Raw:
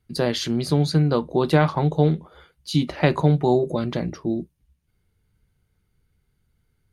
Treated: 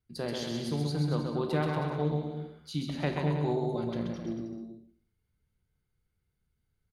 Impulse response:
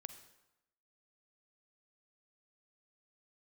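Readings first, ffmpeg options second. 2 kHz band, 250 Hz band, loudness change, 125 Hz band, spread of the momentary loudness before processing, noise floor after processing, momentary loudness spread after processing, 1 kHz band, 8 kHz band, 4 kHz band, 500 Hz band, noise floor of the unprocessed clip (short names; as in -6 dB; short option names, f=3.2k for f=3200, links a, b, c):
-10.5 dB, -10.0 dB, -10.5 dB, -10.0 dB, 9 LU, -80 dBFS, 9 LU, -10.5 dB, -10.5 dB, -10.5 dB, -10.5 dB, -71 dBFS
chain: -filter_complex "[0:a]aecho=1:1:130|234|317.2|383.8|437:0.631|0.398|0.251|0.158|0.1[a];[1:a]atrim=start_sample=2205,asetrate=70560,aresample=44100[b];[a][b]afir=irnorm=-1:irlink=0,volume=-3.5dB"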